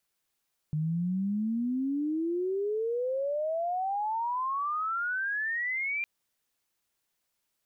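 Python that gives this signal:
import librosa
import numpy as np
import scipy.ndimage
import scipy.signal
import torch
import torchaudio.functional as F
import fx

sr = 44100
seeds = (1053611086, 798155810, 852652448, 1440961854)

y = fx.chirp(sr, length_s=5.31, from_hz=150.0, to_hz=2400.0, law='logarithmic', from_db=-26.5, to_db=-28.5)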